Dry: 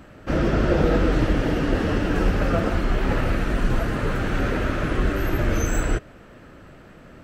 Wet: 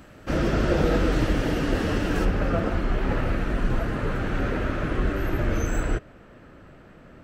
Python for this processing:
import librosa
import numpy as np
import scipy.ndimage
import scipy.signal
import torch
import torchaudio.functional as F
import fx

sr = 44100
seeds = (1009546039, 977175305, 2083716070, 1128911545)

y = fx.high_shelf(x, sr, hz=3800.0, db=fx.steps((0.0, 6.5), (2.24, -6.0)))
y = y * 10.0 ** (-2.5 / 20.0)